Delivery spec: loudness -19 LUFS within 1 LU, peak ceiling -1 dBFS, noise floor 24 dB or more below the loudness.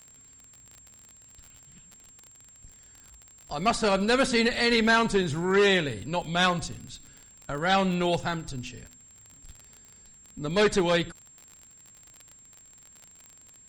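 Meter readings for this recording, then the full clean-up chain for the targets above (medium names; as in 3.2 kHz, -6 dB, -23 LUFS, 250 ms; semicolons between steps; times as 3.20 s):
tick rate 39 per s; steady tone 7.5 kHz; tone level -51 dBFS; loudness -25.0 LUFS; peak level -11.5 dBFS; loudness target -19.0 LUFS
-> de-click; band-stop 7.5 kHz, Q 30; trim +6 dB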